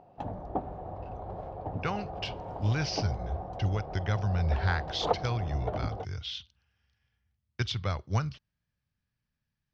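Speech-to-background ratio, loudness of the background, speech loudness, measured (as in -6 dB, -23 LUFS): 5.0 dB, -38.0 LUFS, -33.0 LUFS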